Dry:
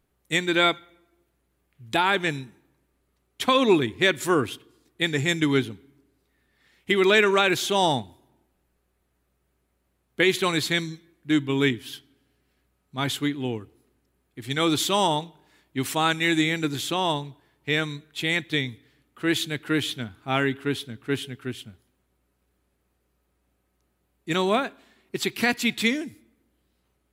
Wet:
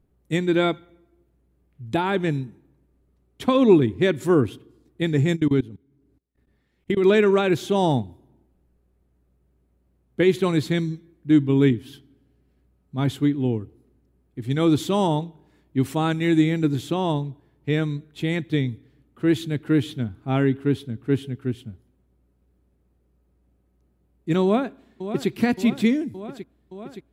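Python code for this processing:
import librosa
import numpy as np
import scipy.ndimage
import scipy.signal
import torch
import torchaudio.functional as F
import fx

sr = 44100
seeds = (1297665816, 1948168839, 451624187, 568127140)

y = fx.level_steps(x, sr, step_db=23, at=(5.35, 7.03), fade=0.02)
y = fx.echo_throw(y, sr, start_s=24.43, length_s=0.86, ms=570, feedback_pct=75, wet_db=-11.0)
y = fx.tilt_shelf(y, sr, db=9.0, hz=660.0)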